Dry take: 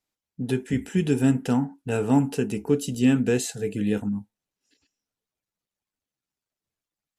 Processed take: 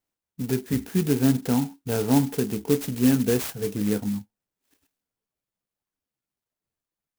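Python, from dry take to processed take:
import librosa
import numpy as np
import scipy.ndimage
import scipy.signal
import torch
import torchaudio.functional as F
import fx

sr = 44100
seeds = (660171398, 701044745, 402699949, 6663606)

y = fx.clock_jitter(x, sr, seeds[0], jitter_ms=0.089)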